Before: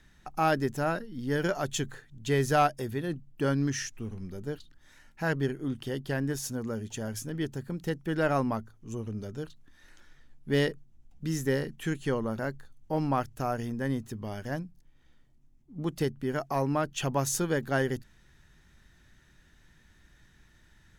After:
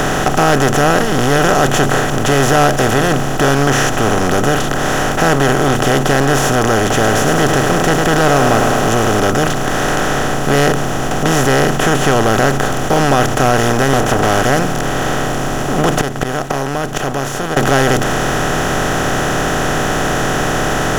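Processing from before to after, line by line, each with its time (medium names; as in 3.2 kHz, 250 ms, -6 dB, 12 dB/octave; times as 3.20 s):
6.89–9.20 s: bit-crushed delay 104 ms, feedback 55%, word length 8-bit, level -15 dB
13.93–14.42 s: comb filter that takes the minimum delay 1.3 ms
15.93–17.57 s: inverted gate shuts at -27 dBFS, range -41 dB
whole clip: spectral levelling over time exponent 0.2; bass shelf 63 Hz +12 dB; waveshaping leveller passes 2; trim +1.5 dB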